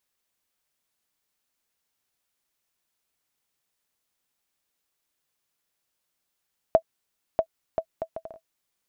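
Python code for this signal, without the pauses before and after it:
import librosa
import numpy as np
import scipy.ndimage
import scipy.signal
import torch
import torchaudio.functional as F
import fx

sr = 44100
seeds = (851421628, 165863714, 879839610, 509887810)

y = fx.bouncing_ball(sr, first_gap_s=0.64, ratio=0.61, hz=652.0, decay_ms=73.0, level_db=-6.5)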